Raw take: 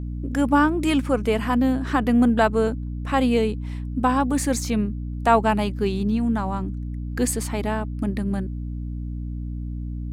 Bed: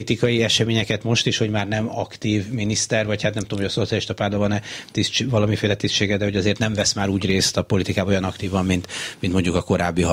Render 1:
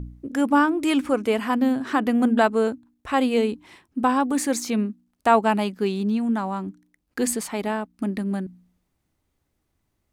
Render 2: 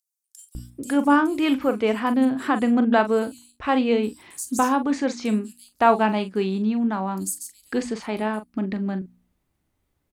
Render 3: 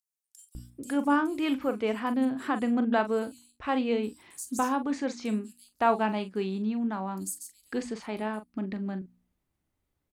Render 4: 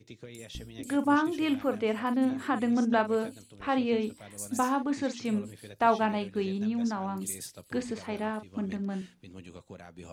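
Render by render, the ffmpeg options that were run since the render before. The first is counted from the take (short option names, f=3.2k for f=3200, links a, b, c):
-af "bandreject=f=60:t=h:w=4,bandreject=f=120:t=h:w=4,bandreject=f=180:t=h:w=4,bandreject=f=240:t=h:w=4,bandreject=f=300:t=h:w=4"
-filter_complex "[0:a]asplit=2[a][b];[b]adelay=42,volume=-11dB[c];[a][c]amix=inputs=2:normalize=0,acrossover=split=5600[d][e];[d]adelay=550[f];[f][e]amix=inputs=2:normalize=0"
-af "volume=-7dB"
-filter_complex "[1:a]volume=-27.5dB[a];[0:a][a]amix=inputs=2:normalize=0"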